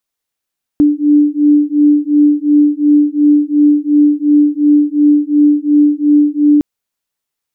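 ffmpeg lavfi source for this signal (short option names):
-f lavfi -i "aevalsrc='0.316*(sin(2*PI*293*t)+sin(2*PI*295.8*t))':d=5.81:s=44100"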